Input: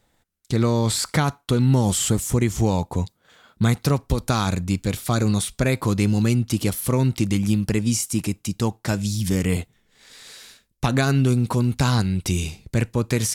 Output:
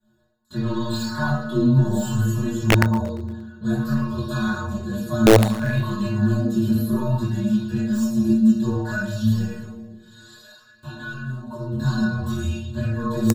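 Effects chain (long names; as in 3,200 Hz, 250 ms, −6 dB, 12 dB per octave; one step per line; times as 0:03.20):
high-shelf EQ 2,600 Hz +10.5 dB
soft clipping −17 dBFS, distortion −11 dB
chorus effect 0.25 Hz, depth 6.8 ms
0:09.41–0:11.71: downward compressor 12 to 1, threshold −32 dBFS, peak gain reduction 12.5 dB
EQ curve with evenly spaced ripples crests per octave 1.4, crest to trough 16 dB
convolution reverb RT60 1.1 s, pre-delay 3 ms, DRR −7 dB
flanger 2 Hz, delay 4 ms, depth 5.2 ms, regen +3%
stiff-string resonator 110 Hz, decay 0.59 s, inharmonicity 0.008
wrap-around overflow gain 9 dB
repeating echo 116 ms, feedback 55%, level −17.5 dB
auto-filter bell 0.59 Hz 270–3,200 Hz +10 dB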